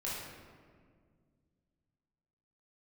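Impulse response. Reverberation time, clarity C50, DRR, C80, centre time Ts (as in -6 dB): 1.9 s, -1.0 dB, -7.5 dB, 2.0 dB, 96 ms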